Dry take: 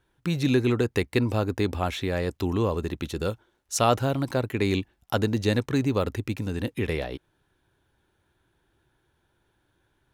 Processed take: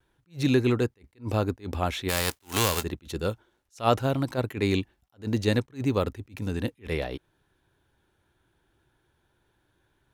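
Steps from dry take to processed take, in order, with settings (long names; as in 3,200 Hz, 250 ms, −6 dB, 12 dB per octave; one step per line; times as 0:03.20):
0:02.08–0:02.82: spectral envelope flattened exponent 0.3
pitch vibrato 0.44 Hz 16 cents
level that may rise only so fast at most 280 dB per second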